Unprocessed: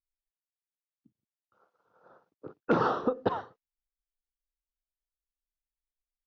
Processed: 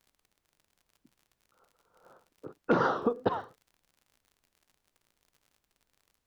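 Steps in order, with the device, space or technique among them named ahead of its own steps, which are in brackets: warped LP (record warp 33 1/3 rpm, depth 100 cents; crackle 61/s -50 dBFS; pink noise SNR 44 dB)

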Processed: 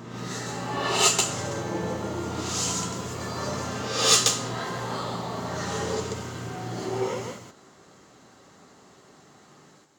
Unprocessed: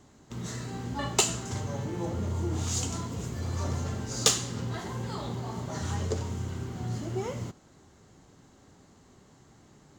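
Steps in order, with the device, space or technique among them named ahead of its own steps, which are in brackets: ghost voice (reverse; reverb RT60 1.3 s, pre-delay 0.118 s, DRR -8.5 dB; reverse; HPF 590 Hz 6 dB/oct)

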